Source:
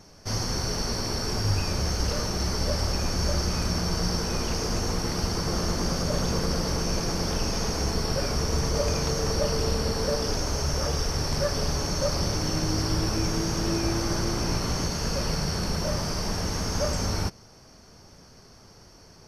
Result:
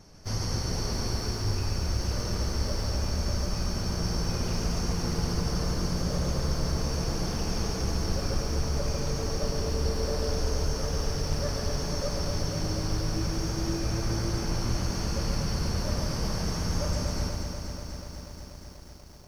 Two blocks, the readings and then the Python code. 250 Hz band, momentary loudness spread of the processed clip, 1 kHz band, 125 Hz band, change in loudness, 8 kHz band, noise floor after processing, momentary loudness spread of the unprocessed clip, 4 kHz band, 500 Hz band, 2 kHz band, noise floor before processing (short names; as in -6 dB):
-3.0 dB, 3 LU, -5.0 dB, -1.0 dB, -3.0 dB, -5.0 dB, -43 dBFS, 2 LU, -5.0 dB, -4.5 dB, -5.0 dB, -52 dBFS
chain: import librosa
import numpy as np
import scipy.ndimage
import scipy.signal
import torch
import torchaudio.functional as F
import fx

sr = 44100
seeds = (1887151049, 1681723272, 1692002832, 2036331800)

y = fx.low_shelf(x, sr, hz=160.0, db=6.5)
y = fx.rider(y, sr, range_db=10, speed_s=0.5)
y = y + 10.0 ** (-4.0 / 20.0) * np.pad(y, (int(142 * sr / 1000.0), 0))[:len(y)]
y = fx.echo_crushed(y, sr, ms=242, feedback_pct=80, bits=8, wet_db=-7.0)
y = y * 10.0 ** (-8.5 / 20.0)